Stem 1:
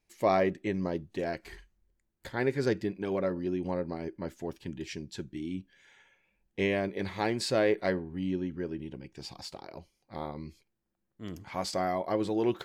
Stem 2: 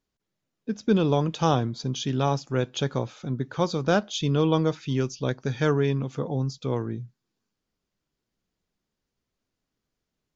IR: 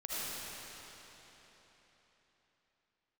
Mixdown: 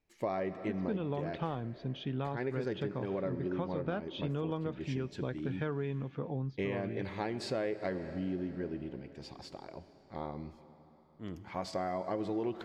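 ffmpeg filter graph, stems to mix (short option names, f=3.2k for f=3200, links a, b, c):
-filter_complex "[0:a]lowpass=f=2.5k:p=1,volume=-2.5dB,asplit=2[a][b];[b]volume=-16.5dB[c];[1:a]lowpass=f=3k:w=0.5412,lowpass=f=3k:w=1.3066,volume=-7.5dB[d];[2:a]atrim=start_sample=2205[e];[c][e]afir=irnorm=-1:irlink=0[f];[a][d][f]amix=inputs=3:normalize=0,acompressor=threshold=-31dB:ratio=6"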